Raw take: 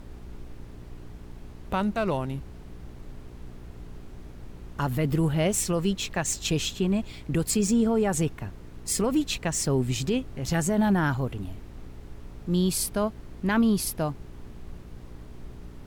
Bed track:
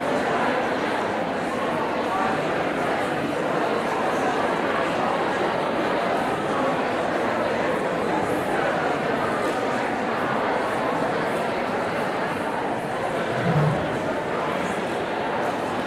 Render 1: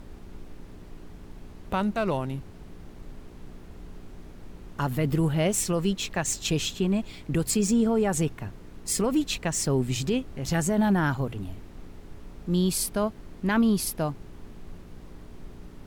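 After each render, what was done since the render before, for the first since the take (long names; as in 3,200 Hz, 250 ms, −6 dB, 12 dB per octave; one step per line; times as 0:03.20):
hum removal 60 Hz, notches 2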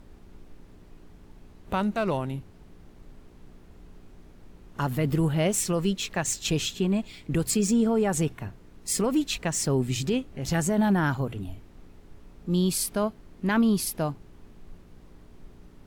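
noise reduction from a noise print 6 dB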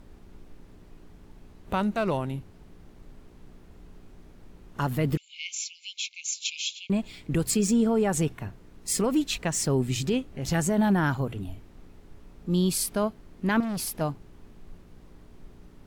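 0:05.17–0:06.90: linear-phase brick-wall band-pass 2,100–7,400 Hz
0:13.60–0:14.01: hard clipping −28.5 dBFS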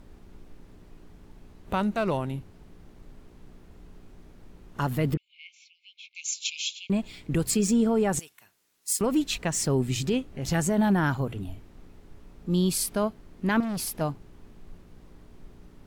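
0:05.14–0:06.15: head-to-tape spacing loss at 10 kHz 42 dB
0:08.19–0:09.01: first difference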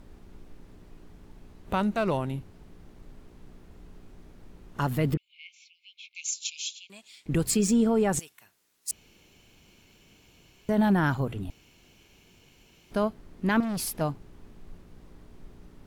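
0:06.30–0:07.26: resonant band-pass 7,900 Hz, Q 0.65
0:08.91–0:10.69: fill with room tone
0:11.50–0:12.91: fill with room tone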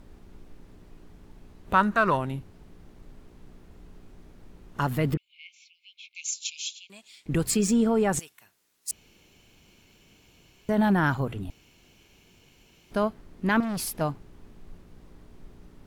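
dynamic equaliser 1,400 Hz, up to +3 dB, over −40 dBFS, Q 0.74
0:01.75–0:02.16: gain on a spectral selection 930–1,900 Hz +9 dB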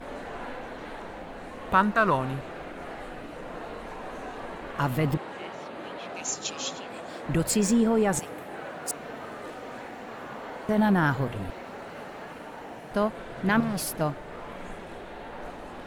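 mix in bed track −15.5 dB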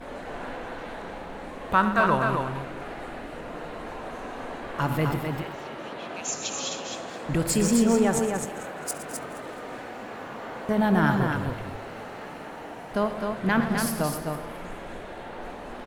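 feedback delay that plays each chunk backwards 106 ms, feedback 57%, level −12 dB
multi-tap delay 68/116/258 ms −17.5/−13/−5 dB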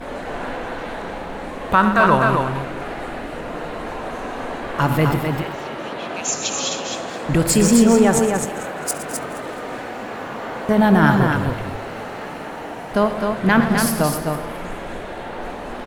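level +8 dB
brickwall limiter −3 dBFS, peak gain reduction 3 dB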